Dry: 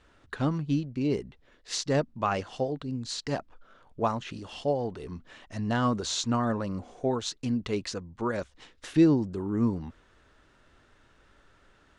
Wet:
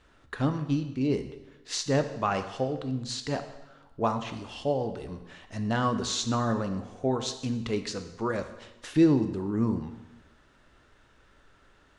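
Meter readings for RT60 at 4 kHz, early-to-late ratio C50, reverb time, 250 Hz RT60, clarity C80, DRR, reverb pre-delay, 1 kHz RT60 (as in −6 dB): 0.95 s, 10.5 dB, 1.0 s, 1.1 s, 12.5 dB, 8.0 dB, 7 ms, 1.0 s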